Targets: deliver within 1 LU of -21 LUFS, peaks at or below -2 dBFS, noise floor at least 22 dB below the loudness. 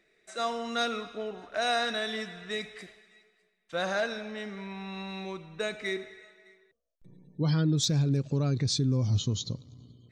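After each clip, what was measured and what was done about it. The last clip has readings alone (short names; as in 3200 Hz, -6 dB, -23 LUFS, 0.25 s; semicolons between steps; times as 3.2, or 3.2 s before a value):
loudness -31.0 LUFS; peak -17.0 dBFS; loudness target -21.0 LUFS
-> gain +10 dB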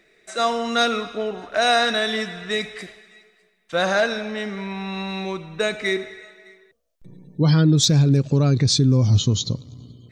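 loudness -21.0 LUFS; peak -7.0 dBFS; noise floor -61 dBFS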